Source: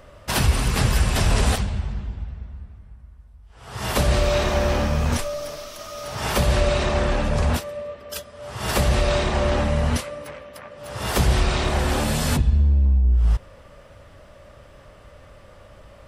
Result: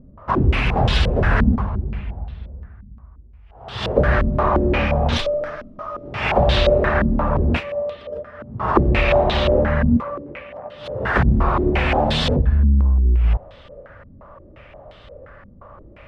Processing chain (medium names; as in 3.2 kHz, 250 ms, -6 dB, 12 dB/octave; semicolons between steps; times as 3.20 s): vibrato 0.76 Hz 26 cents; step-sequenced low-pass 5.7 Hz 230–3600 Hz; trim +1.5 dB